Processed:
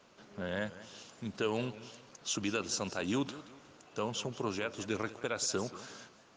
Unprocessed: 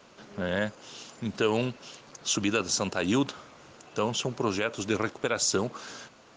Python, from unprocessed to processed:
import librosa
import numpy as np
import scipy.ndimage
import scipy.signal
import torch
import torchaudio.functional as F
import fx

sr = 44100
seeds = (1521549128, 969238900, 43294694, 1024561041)

y = fx.echo_warbled(x, sr, ms=181, feedback_pct=37, rate_hz=2.8, cents=155, wet_db=-16)
y = y * librosa.db_to_amplitude(-7.5)